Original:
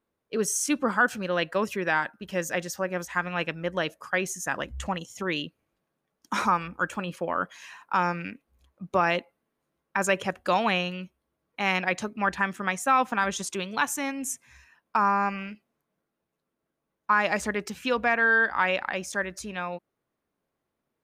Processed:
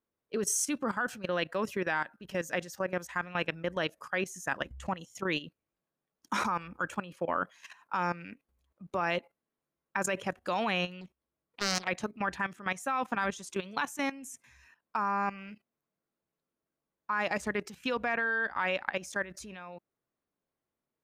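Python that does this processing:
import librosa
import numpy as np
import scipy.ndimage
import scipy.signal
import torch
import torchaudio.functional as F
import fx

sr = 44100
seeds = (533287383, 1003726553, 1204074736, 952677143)

y = fx.doppler_dist(x, sr, depth_ms=0.94, at=(11.01, 11.88))
y = fx.level_steps(y, sr, step_db=15)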